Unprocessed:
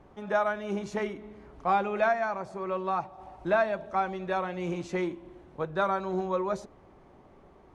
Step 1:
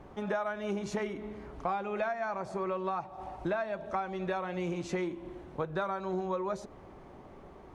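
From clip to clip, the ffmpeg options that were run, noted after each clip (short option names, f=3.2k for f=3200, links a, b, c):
-af "acompressor=threshold=-35dB:ratio=6,volume=4.5dB"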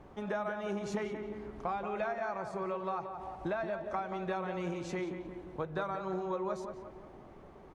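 -filter_complex "[0:a]asplit=2[a][b];[b]adelay=178,lowpass=f=2.1k:p=1,volume=-7dB,asplit=2[c][d];[d]adelay=178,lowpass=f=2.1k:p=1,volume=0.52,asplit=2[e][f];[f]adelay=178,lowpass=f=2.1k:p=1,volume=0.52,asplit=2[g][h];[h]adelay=178,lowpass=f=2.1k:p=1,volume=0.52,asplit=2[i][j];[j]adelay=178,lowpass=f=2.1k:p=1,volume=0.52,asplit=2[k][l];[l]adelay=178,lowpass=f=2.1k:p=1,volume=0.52[m];[a][c][e][g][i][k][m]amix=inputs=7:normalize=0,volume=-3dB"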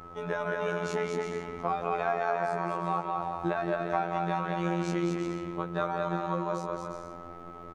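-af "aecho=1:1:220|352|431.2|478.7|507.2:0.631|0.398|0.251|0.158|0.1,aeval=exprs='val(0)+0.00251*sin(2*PI*1300*n/s)':c=same,afftfilt=real='hypot(re,im)*cos(PI*b)':imag='0':win_size=2048:overlap=0.75,volume=7.5dB"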